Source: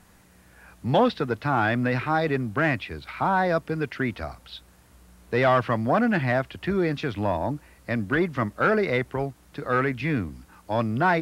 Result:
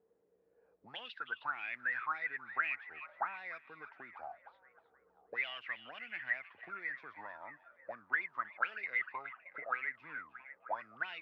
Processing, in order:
envelope filter 440–2,900 Hz, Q 14, up, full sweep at −17 dBFS
echo through a band-pass that steps 313 ms, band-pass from 3,200 Hz, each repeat −0.7 octaves, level −10.5 dB
level +1 dB

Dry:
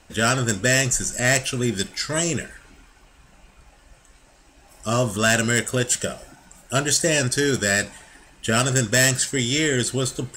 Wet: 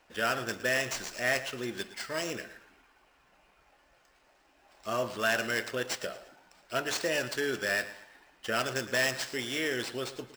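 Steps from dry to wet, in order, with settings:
on a send: repeating echo 113 ms, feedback 34%, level −15 dB
on the sum: sample-rate reduction 13,000 Hz, jitter 0%
bass and treble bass −15 dB, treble −9 dB
level −7.5 dB

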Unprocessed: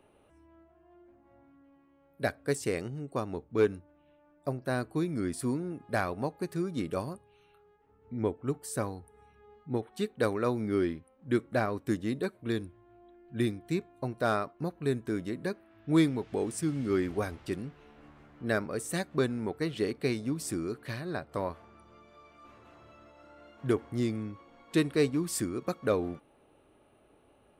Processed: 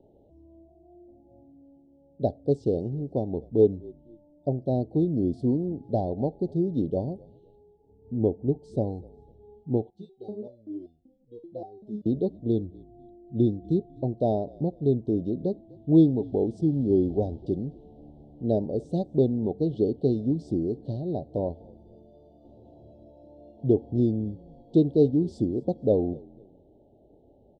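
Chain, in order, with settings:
inverse Chebyshev band-stop filter 1,100–2,500 Hz, stop band 40 dB
head-to-tape spacing loss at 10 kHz 43 dB
echo with shifted repeats 249 ms, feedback 35%, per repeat −44 Hz, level −24 dB
0:09.90–0:12.06: step-sequenced resonator 5.2 Hz 170–710 Hz
level +8 dB

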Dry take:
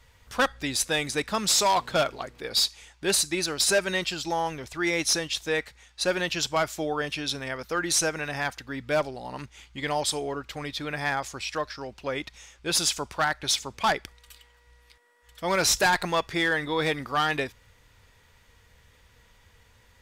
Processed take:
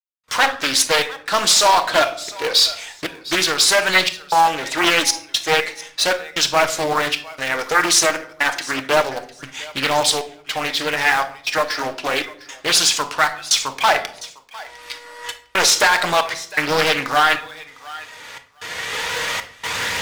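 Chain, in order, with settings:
camcorder AGC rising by 15 dB per second
meter weighting curve A
noise gate with hold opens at −47 dBFS
leveller curve on the samples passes 1
flanger 0.3 Hz, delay 0.3 ms, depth 3.3 ms, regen +60%
in parallel at −10 dB: wrap-around overflow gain 30 dB
on the sum: gate pattern "...xxxxxxxxxx" 191 BPM −60 dB
feedback echo with a high-pass in the loop 704 ms, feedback 19%, high-pass 700 Hz, level −19 dB
on a send at −6.5 dB: convolution reverb RT60 0.60 s, pre-delay 6 ms
on the sum: boost into a limiter +15.5 dB
highs frequency-modulated by the lows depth 0.47 ms
level −4 dB

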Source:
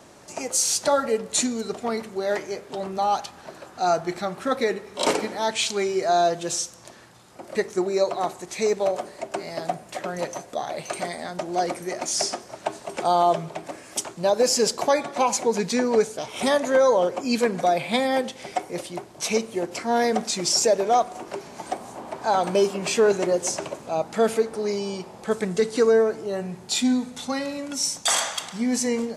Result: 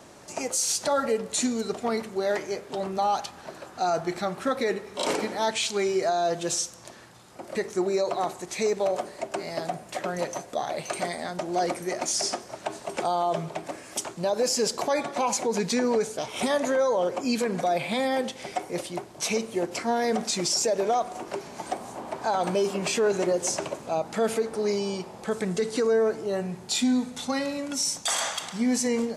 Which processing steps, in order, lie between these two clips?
brickwall limiter −16.5 dBFS, peak gain reduction 8 dB

